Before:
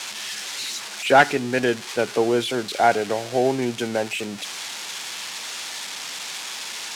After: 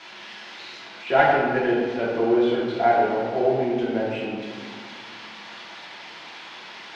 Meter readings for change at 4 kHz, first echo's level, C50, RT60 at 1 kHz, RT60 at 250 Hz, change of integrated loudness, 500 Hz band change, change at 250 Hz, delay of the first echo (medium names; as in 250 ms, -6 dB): -9.0 dB, no echo, 0.0 dB, 1.9 s, 2.8 s, +1.5 dB, +0.5 dB, +1.0 dB, no echo